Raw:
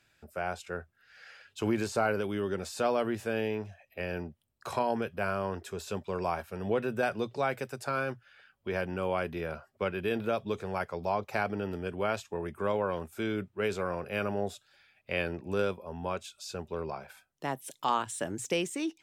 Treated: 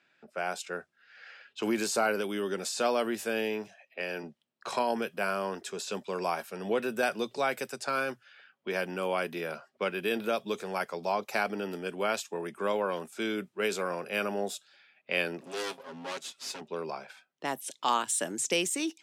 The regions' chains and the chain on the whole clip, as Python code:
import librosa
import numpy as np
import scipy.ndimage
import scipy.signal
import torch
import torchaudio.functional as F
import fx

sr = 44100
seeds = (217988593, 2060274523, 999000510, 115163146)

y = fx.chain(x, sr, fx.highpass(hz=150.0, slope=12),
    fx.low_shelf(hz=260.0, db=-4.0), at=(3.67, 4.23))
y = fx.chain(y, sr, fx.lower_of_two(delay_ms=7.4),
    fx.high_shelf(hz=6600.0, db=11.0),
    fx.tube_stage(drive_db=32.0, bias=0.25), at=(15.41, 16.61))
y = fx.env_lowpass(y, sr, base_hz=2300.0, full_db=-30.5)
y = scipy.signal.sosfilt(scipy.signal.butter(4, 180.0, 'highpass', fs=sr, output='sos'), y)
y = fx.high_shelf(y, sr, hz=3100.0, db=11.0)